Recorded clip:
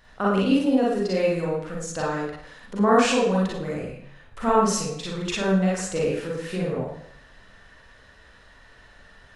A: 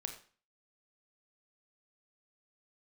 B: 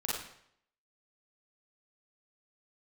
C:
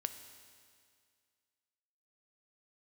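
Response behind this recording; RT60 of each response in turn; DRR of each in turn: B; 0.40 s, 0.70 s, 2.1 s; 4.5 dB, -6.5 dB, 8.5 dB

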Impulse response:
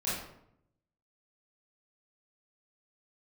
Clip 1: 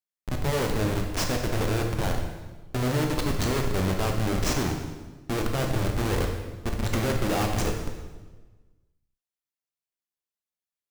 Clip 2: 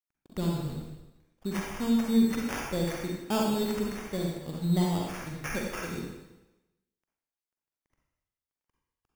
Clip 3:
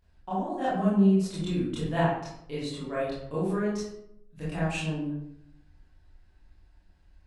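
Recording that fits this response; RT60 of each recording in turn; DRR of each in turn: 3; 1.3 s, 0.95 s, 0.75 s; 2.0 dB, -1.5 dB, -10.5 dB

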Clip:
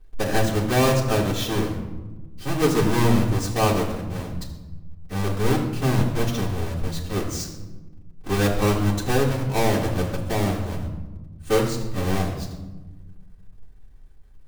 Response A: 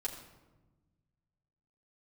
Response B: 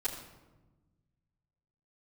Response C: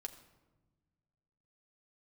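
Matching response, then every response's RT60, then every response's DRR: B; 1.2 s, 1.2 s, 1.2 s; -5.0 dB, -13.0 dB, 3.5 dB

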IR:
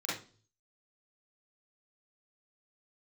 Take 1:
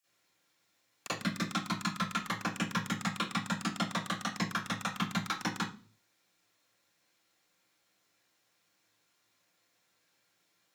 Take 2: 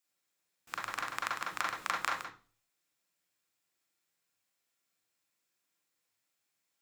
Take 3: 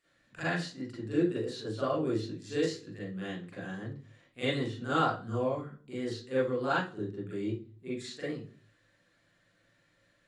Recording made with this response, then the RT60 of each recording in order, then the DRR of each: 3; 0.40 s, 0.40 s, 0.40 s; -14.5 dB, -2.0 dB, -9.0 dB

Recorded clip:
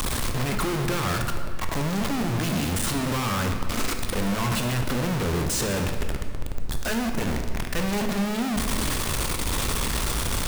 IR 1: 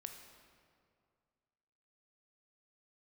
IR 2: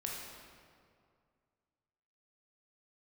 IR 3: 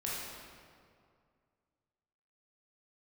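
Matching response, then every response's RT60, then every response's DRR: 1; 2.2 s, 2.2 s, 2.2 s; 4.5 dB, -3.0 dB, -7.0 dB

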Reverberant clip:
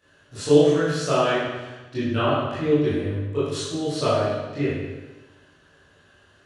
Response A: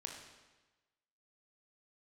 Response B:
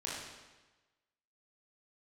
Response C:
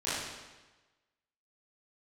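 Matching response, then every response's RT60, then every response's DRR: C; 1.2 s, 1.2 s, 1.2 s; 0.5 dB, -6.5 dB, -13.0 dB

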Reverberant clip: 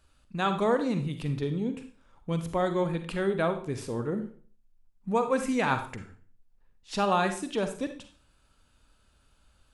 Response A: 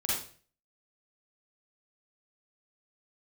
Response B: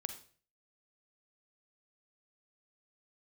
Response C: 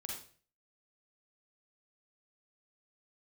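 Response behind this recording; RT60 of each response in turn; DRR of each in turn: B; 0.45 s, 0.45 s, 0.45 s; -7.0 dB, 8.0 dB, -2.0 dB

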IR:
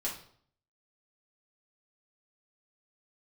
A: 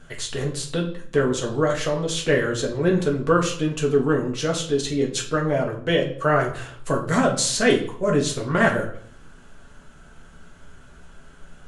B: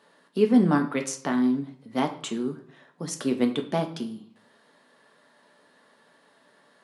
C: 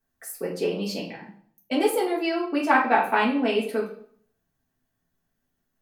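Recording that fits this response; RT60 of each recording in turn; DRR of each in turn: C; 0.60 s, 0.60 s, 0.60 s; -1.0 dB, 4.0 dB, -5.0 dB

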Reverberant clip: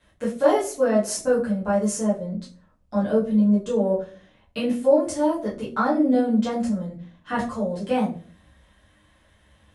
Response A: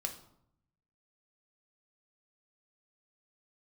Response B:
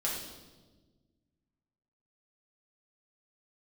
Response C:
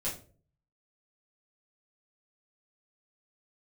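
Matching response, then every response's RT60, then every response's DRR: C; 0.70 s, 1.3 s, 0.40 s; 4.0 dB, -5.0 dB, -8.5 dB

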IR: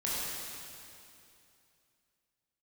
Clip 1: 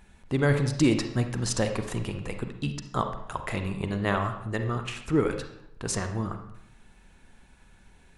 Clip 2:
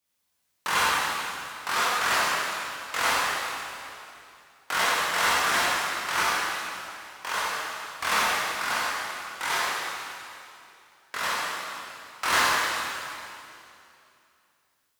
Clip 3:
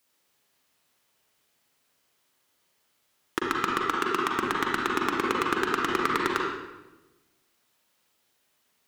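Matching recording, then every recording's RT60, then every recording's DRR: 2; 0.75 s, 2.7 s, 1.1 s; 6.5 dB, -8.0 dB, -2.5 dB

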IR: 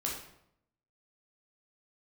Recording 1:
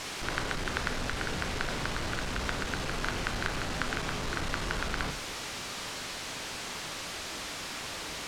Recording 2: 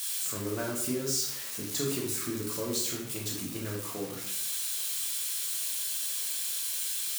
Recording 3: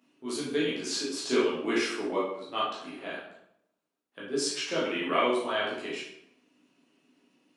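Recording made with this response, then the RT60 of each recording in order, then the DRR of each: 2; 0.75 s, 0.75 s, 0.75 s; 7.0 dB, -3.0 dB, -8.0 dB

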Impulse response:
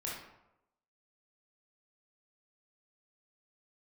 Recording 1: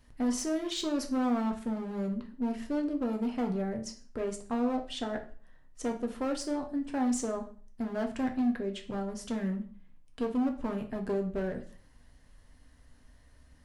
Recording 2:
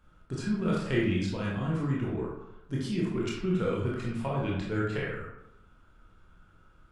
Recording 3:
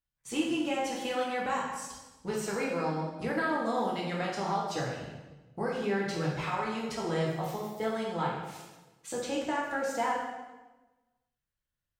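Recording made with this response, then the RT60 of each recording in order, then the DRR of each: 2; 0.45 s, 0.90 s, 1.2 s; 3.5 dB, -5.5 dB, -5.0 dB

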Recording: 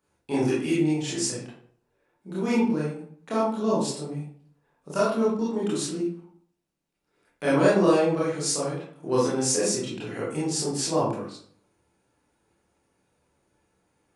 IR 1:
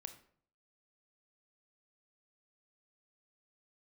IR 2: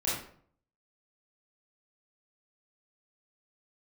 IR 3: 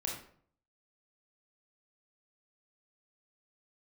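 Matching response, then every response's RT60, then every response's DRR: 2; 0.55 s, 0.55 s, 0.55 s; 8.5 dB, -8.5 dB, -1.5 dB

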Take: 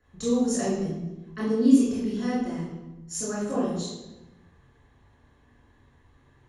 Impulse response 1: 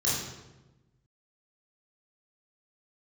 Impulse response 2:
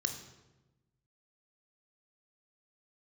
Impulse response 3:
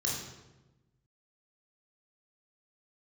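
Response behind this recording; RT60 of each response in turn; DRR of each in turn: 1; 1.1 s, 1.1 s, 1.1 s; -8.0 dB, 5.5 dB, -3.5 dB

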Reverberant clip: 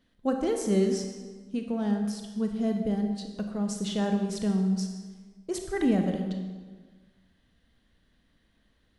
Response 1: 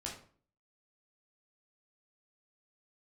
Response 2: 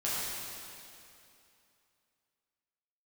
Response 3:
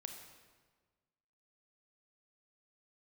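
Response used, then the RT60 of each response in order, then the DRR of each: 3; 0.45 s, 2.7 s, 1.5 s; -3.0 dB, -9.5 dB, 4.0 dB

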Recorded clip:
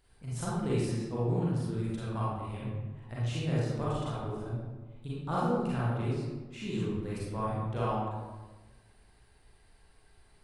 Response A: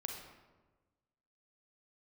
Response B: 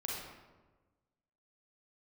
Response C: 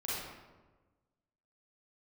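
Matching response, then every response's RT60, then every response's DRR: C; 1.3 s, 1.3 s, 1.3 s; 2.0 dB, -4.0 dB, -8.5 dB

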